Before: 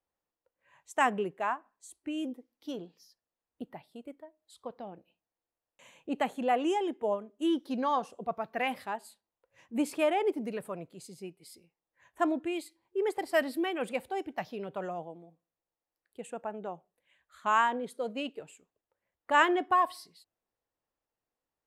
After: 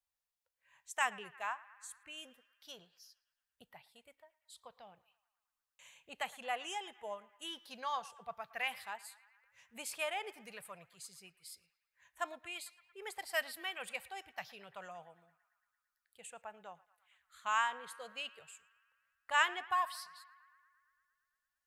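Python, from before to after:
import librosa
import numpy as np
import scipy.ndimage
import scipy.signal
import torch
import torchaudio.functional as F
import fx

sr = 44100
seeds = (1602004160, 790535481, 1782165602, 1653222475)

p1 = fx.tone_stack(x, sr, knobs='10-0-10')
p2 = p1 + fx.echo_banded(p1, sr, ms=113, feedback_pct=76, hz=1600.0, wet_db=-19, dry=0)
y = p2 * librosa.db_to_amplitude(1.5)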